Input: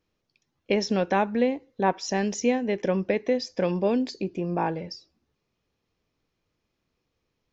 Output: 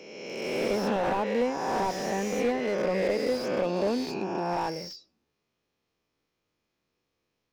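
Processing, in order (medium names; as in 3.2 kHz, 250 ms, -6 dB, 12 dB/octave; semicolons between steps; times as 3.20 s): reverse spectral sustain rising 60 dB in 1.70 s; bass shelf 140 Hz -10.5 dB; slew-rate limiter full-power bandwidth 75 Hz; trim -3.5 dB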